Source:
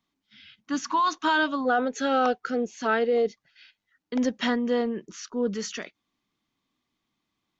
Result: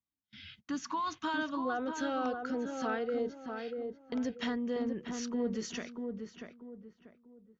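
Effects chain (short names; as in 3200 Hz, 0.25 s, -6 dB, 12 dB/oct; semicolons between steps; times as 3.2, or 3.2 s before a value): bell 69 Hz +15 dB 2 oct; gate -57 dBFS, range -22 dB; compressor 2:1, threshold -42 dBFS, peak gain reduction 13 dB; on a send: darkening echo 0.639 s, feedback 34%, low-pass 1400 Hz, level -4.5 dB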